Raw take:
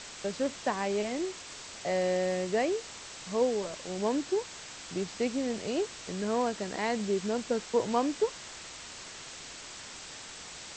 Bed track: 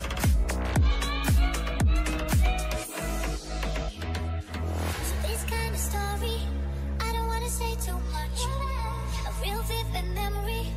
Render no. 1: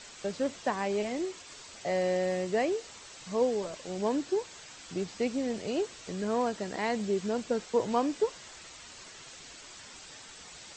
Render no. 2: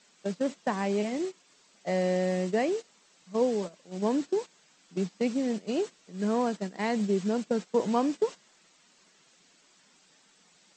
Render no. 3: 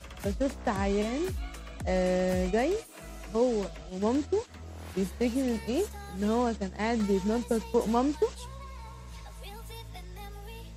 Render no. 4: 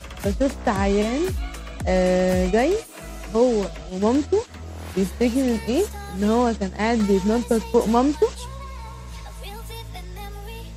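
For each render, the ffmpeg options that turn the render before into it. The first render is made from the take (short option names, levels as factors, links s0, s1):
-af "afftdn=nr=7:nf=-46"
-af "agate=range=0.2:threshold=0.02:ratio=16:detection=peak,lowshelf=f=130:t=q:w=3:g=-11"
-filter_complex "[1:a]volume=0.211[s0];[0:a][s0]amix=inputs=2:normalize=0"
-af "volume=2.51"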